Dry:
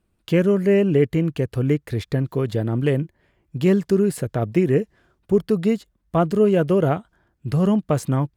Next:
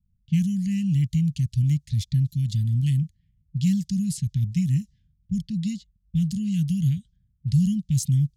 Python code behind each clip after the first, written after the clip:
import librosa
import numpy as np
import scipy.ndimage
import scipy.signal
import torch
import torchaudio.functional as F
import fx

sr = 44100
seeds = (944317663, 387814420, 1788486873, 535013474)

y = scipy.signal.sosfilt(scipy.signal.cheby2(4, 50, [360.0, 1300.0], 'bandstop', fs=sr, output='sos'), x)
y = fx.env_lowpass(y, sr, base_hz=670.0, full_db=-23.0)
y = fx.graphic_eq_15(y, sr, hz=(1000, 2500, 6300), db=(-11, -10, 6))
y = y * librosa.db_to_amplitude(2.5)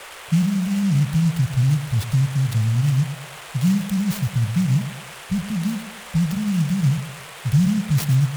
y = fx.dmg_noise_band(x, sr, seeds[0], low_hz=400.0, high_hz=3500.0, level_db=-42.0)
y = fx.echo_feedback(y, sr, ms=110, feedback_pct=37, wet_db=-11.5)
y = fx.noise_mod_delay(y, sr, seeds[1], noise_hz=5500.0, depth_ms=0.042)
y = y * librosa.db_to_amplitude(3.0)